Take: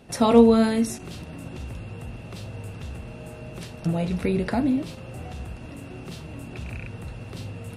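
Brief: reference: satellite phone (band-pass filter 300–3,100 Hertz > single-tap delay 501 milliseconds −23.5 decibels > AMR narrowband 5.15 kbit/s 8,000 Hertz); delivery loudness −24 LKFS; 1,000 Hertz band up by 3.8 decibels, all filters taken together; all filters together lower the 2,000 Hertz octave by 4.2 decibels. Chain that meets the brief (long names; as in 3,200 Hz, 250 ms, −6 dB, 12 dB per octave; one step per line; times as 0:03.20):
band-pass filter 300–3,100 Hz
parametric band 1,000 Hz +6.5 dB
parametric band 2,000 Hz −7 dB
single-tap delay 501 ms −23.5 dB
level −0.5 dB
AMR narrowband 5.15 kbit/s 8,000 Hz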